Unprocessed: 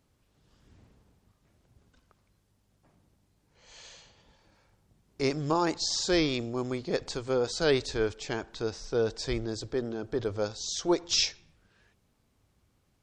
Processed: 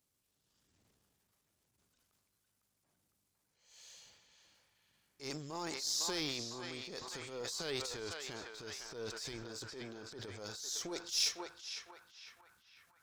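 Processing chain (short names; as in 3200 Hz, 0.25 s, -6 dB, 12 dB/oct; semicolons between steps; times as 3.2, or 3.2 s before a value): half-wave gain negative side -3 dB; pre-emphasis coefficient 0.8; narrowing echo 0.504 s, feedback 63%, band-pass 1500 Hz, level -5 dB; transient shaper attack -9 dB, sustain +8 dB; low shelf 63 Hz -11.5 dB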